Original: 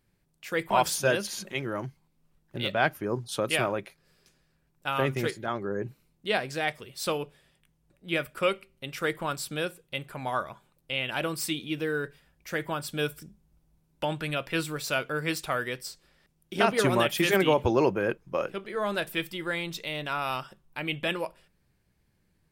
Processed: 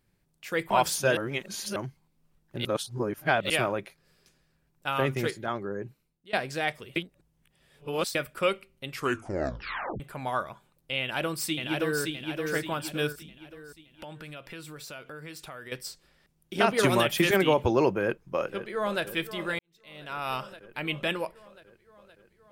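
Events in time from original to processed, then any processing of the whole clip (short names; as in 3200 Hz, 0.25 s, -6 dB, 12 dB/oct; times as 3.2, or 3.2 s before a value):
1.17–1.76 reverse
2.65–3.5 reverse
5.48–6.33 fade out linear, to -21.5 dB
6.96–8.15 reverse
8.88 tape stop 1.12 s
11–12.01 echo throw 0.57 s, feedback 45%, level -3 dB
13.12–15.72 compressor 4:1, threshold -41 dBFS
16.83–17.31 three-band squash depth 100%
18–19.03 echo throw 0.52 s, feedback 70%, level -12.5 dB
19.59–20.33 fade in quadratic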